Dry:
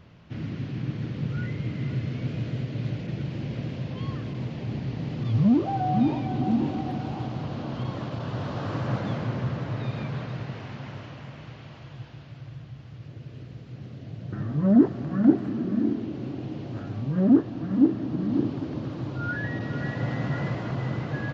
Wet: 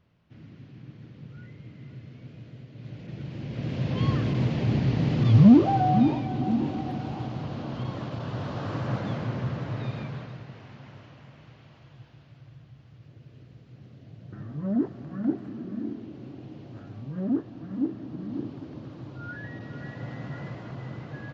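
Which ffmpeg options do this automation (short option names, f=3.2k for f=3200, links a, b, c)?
-af "volume=7dB,afade=t=in:st=2.74:d=0.78:silence=0.266073,afade=t=in:st=3.52:d=0.53:silence=0.316228,afade=t=out:st=5.32:d=0.95:silence=0.375837,afade=t=out:st=9.86:d=0.56:silence=0.446684"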